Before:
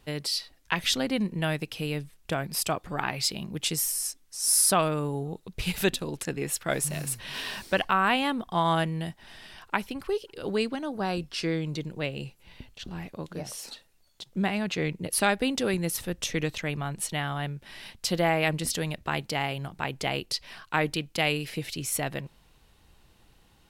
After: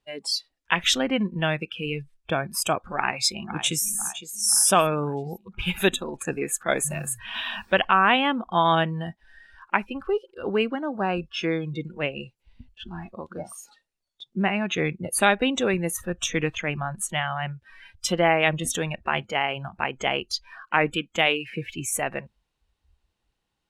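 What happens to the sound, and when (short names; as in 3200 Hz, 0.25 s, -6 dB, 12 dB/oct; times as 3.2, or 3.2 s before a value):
2.96–3.84 echo throw 0.51 s, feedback 60%, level -10 dB
whole clip: spectral noise reduction 22 dB; LPF 9700 Hz 12 dB/oct; low shelf 230 Hz -5.5 dB; gain +5.5 dB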